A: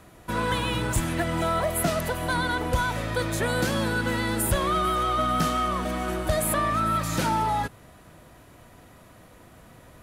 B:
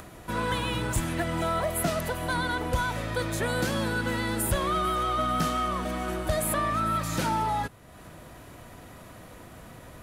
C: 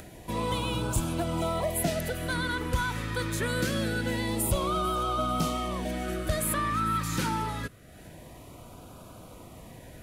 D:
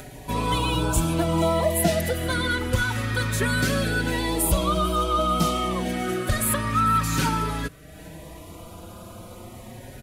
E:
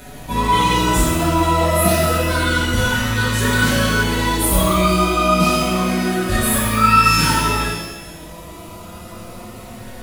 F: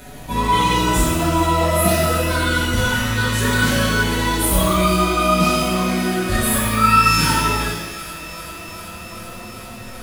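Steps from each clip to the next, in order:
upward compressor, threshold -35 dBFS; trim -2.5 dB
LFO notch sine 0.25 Hz 640–1900 Hz
endless flanger 4.9 ms +0.29 Hz; trim +9 dB
pitch-shifted reverb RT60 1 s, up +12 st, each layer -8 dB, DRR -8.5 dB; trim -3 dB
feedback echo behind a high-pass 389 ms, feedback 81%, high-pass 1.6 kHz, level -15 dB; trim -1 dB

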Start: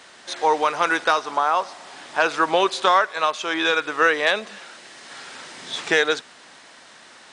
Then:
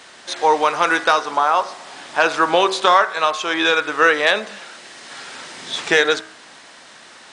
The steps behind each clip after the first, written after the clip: de-hum 63.47 Hz, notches 35; trim +4 dB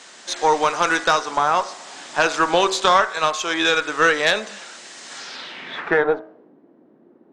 low-pass sweep 7.4 kHz -> 340 Hz, 5.15–6.52 s; Chebyshev high-pass 180 Hz, order 2; Chebyshev shaper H 2 -15 dB, 4 -34 dB, 6 -34 dB, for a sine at -0.5 dBFS; trim -1.5 dB

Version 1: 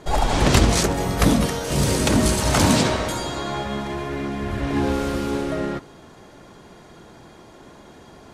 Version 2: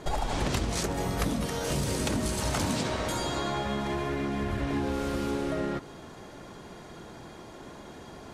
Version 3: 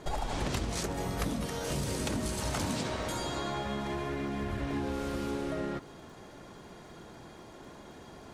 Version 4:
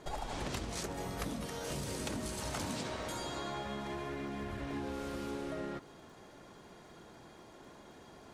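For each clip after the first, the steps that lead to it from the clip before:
compression 5:1, threshold -27 dBFS, peak gain reduction 15 dB
crackle 38 per s -47 dBFS; trim -4 dB
bass shelf 190 Hz -4 dB; trim -4.5 dB

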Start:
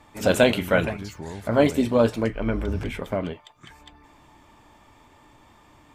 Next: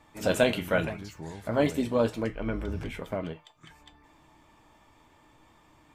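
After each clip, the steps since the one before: feedback comb 160 Hz, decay 0.21 s, harmonics all, mix 60%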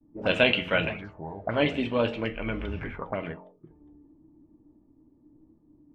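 de-hum 45.75 Hz, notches 20; expander -57 dBFS; touch-sensitive low-pass 270–2800 Hz up, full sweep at -29 dBFS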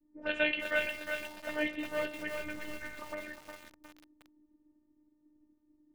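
peaking EQ 1.8 kHz +11 dB 0.5 oct; robot voice 302 Hz; bit-crushed delay 359 ms, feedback 55%, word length 6-bit, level -5 dB; trim -9 dB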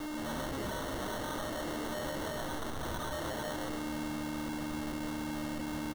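one-bit comparator; frequency-shifting echo 128 ms, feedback 55%, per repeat -74 Hz, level -5 dB; sample-and-hold 18×

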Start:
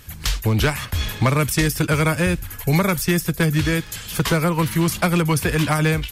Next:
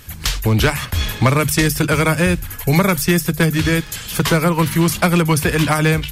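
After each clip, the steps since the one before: hum notches 50/100/150 Hz; trim +4 dB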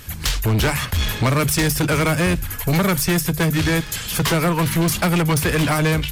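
saturation -16 dBFS, distortion -10 dB; trim +2 dB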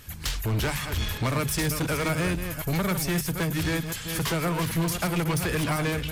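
chunks repeated in reverse 262 ms, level -7.5 dB; trim -8.5 dB

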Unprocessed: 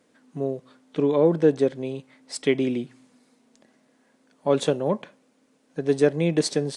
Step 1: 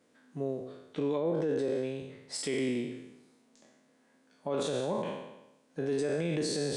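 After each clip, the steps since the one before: spectral sustain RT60 0.94 s; peak limiter -16.5 dBFS, peak gain reduction 10.5 dB; trim -6.5 dB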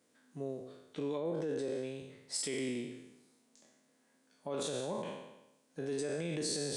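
treble shelf 5 kHz +10.5 dB; trim -6 dB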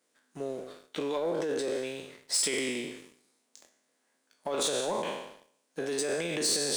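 high-pass 510 Hz 6 dB/octave; harmonic-percussive split harmonic -6 dB; waveshaping leveller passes 2; trim +6.5 dB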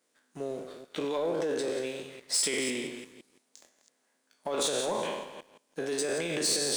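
chunks repeated in reverse 169 ms, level -10.5 dB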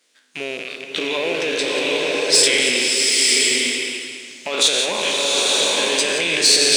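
rattle on loud lows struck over -53 dBFS, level -33 dBFS; frequency weighting D; swelling reverb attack 940 ms, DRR -2 dB; trim +6 dB

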